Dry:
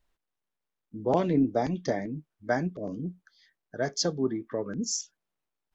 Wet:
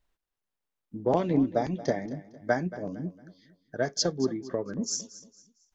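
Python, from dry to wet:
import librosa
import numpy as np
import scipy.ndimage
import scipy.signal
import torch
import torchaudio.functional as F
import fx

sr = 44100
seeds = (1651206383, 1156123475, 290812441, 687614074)

y = fx.transient(x, sr, attack_db=4, sustain_db=-1)
y = fx.echo_feedback(y, sr, ms=228, feedback_pct=34, wet_db=-16.5)
y = y * librosa.db_to_amplitude(-1.5)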